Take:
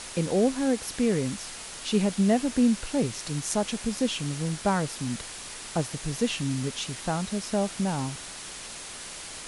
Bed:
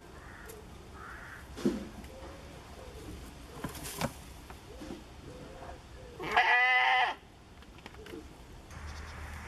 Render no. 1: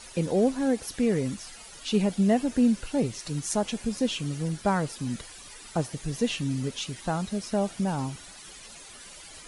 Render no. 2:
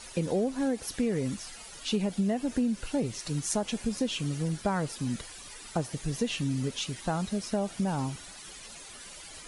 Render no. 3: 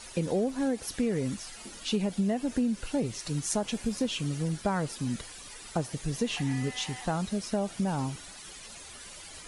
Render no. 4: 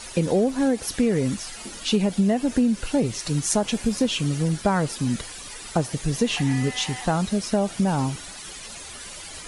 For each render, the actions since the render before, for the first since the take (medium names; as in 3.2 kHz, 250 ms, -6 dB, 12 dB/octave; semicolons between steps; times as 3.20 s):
noise reduction 12 dB, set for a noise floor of -41 dBFS
compression 10:1, threshold -24 dBFS, peak gain reduction 8 dB
add bed -19 dB
trim +7.5 dB